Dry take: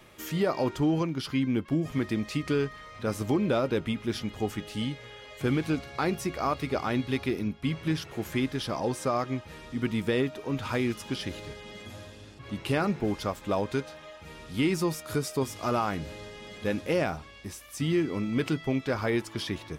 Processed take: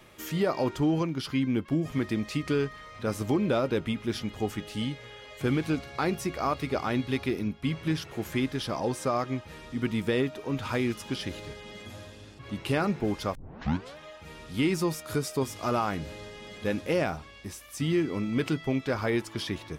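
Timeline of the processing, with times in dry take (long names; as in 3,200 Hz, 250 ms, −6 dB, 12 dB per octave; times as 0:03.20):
0:13.35: tape start 0.62 s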